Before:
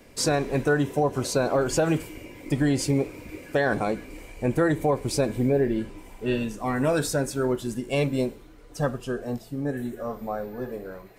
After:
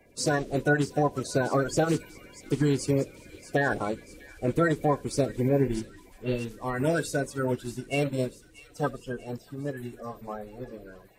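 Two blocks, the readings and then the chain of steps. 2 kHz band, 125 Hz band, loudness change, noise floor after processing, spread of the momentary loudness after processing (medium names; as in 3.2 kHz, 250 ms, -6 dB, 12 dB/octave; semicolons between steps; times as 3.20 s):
-0.5 dB, -1.5 dB, -2.5 dB, -54 dBFS, 14 LU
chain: coarse spectral quantiser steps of 30 dB; feedback echo behind a high-pass 639 ms, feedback 55%, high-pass 2.2 kHz, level -10.5 dB; upward expansion 1.5:1, over -34 dBFS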